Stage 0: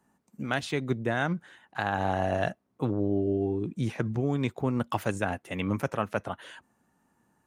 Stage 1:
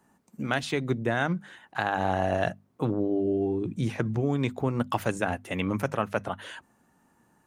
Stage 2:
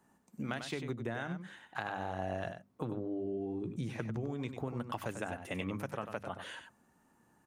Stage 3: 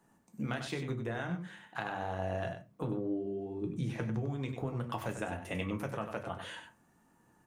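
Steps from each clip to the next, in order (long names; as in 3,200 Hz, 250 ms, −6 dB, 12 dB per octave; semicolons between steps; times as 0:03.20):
in parallel at −2 dB: downward compressor, threshold −36 dBFS, peak gain reduction 13.5 dB; on the sum: mains-hum notches 50/100/150/200/250 Hz
downward compressor, threshold −30 dBFS, peak gain reduction 9.5 dB; on a send: single-tap delay 96 ms −8.5 dB; on the sum: level −4.5 dB
convolution reverb RT60 0.25 s, pre-delay 4 ms, DRR 5.5 dB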